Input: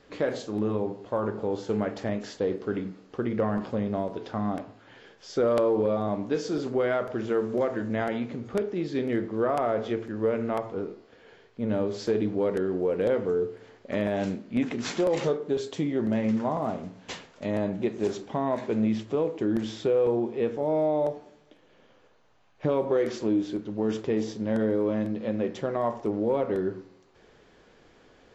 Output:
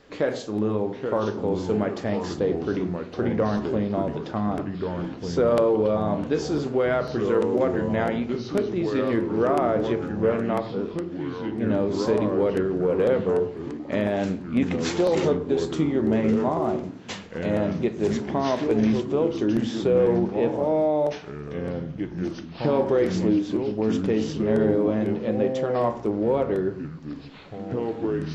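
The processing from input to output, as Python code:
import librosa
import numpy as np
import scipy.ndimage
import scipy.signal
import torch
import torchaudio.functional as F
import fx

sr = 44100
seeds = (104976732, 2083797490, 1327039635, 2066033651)

y = fx.echo_pitch(x, sr, ms=789, semitones=-3, count=3, db_per_echo=-6.0)
y = y * librosa.db_to_amplitude(3.0)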